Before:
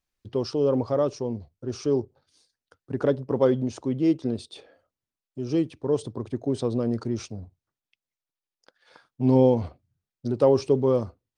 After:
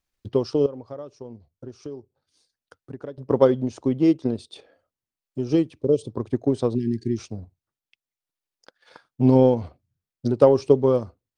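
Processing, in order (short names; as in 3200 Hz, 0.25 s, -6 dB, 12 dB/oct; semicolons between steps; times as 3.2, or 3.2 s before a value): 5.83–6.07 spectral repair 610–2200 Hz; transient shaper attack +5 dB, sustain -4 dB; 0.66–3.18 compressor 2.5:1, threshold -43 dBFS, peak gain reduction 19 dB; 6.75–7.18 brick-wall FIR band-stop 420–1600 Hz; gain +1.5 dB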